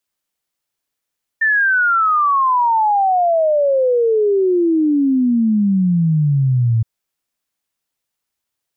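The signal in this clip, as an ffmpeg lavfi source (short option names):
-f lavfi -i "aevalsrc='0.266*clip(min(t,5.42-t)/0.01,0,1)*sin(2*PI*1800*5.42/log(110/1800)*(exp(log(110/1800)*t/5.42)-1))':d=5.42:s=44100"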